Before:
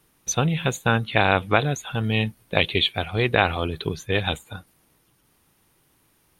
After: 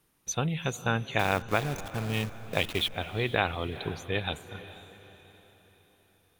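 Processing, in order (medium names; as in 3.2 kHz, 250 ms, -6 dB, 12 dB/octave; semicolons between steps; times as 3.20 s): 1.19–2.94 s: send-on-delta sampling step -26.5 dBFS; echo that smears into a reverb 457 ms, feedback 45%, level -14.5 dB; trim -7.5 dB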